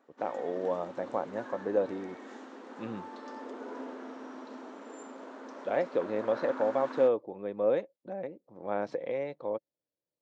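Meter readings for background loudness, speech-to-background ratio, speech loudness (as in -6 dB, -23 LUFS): -44.5 LUFS, 12.0 dB, -32.5 LUFS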